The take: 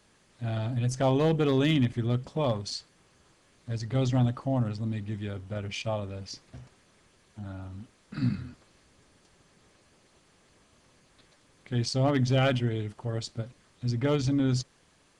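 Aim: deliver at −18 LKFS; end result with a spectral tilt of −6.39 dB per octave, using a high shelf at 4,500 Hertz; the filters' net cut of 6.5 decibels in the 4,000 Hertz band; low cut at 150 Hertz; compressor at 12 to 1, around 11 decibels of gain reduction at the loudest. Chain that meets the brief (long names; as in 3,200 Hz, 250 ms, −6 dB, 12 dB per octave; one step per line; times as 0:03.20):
high-pass filter 150 Hz
parametric band 4,000 Hz −5.5 dB
high-shelf EQ 4,500 Hz −6 dB
downward compressor 12 to 1, threshold −32 dBFS
level +21 dB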